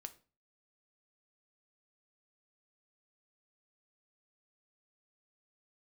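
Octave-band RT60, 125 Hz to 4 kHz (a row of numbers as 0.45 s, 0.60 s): 0.50 s, 0.40 s, 0.35 s, 0.35 s, 0.30 s, 0.30 s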